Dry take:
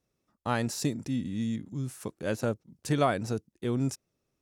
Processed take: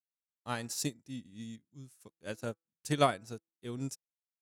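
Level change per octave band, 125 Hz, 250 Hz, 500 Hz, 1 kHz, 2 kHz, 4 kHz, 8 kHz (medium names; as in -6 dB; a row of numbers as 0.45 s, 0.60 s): -8.5 dB, -9.0 dB, -5.0 dB, -2.5 dB, -5.0 dB, -0.5 dB, -1.5 dB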